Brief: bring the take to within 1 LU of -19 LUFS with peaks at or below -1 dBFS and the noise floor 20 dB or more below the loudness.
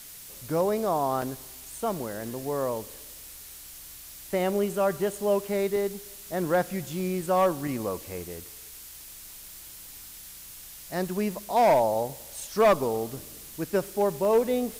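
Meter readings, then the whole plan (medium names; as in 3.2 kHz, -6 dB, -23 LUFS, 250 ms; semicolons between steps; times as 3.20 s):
dropouts 5; longest dropout 1.2 ms; noise floor -45 dBFS; noise floor target -48 dBFS; loudness -27.5 LUFS; peak level -13.0 dBFS; loudness target -19.0 LUFS
-> interpolate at 1.22/2.48/5.94/7.00/14.25 s, 1.2 ms; noise reduction 6 dB, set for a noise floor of -45 dBFS; trim +8.5 dB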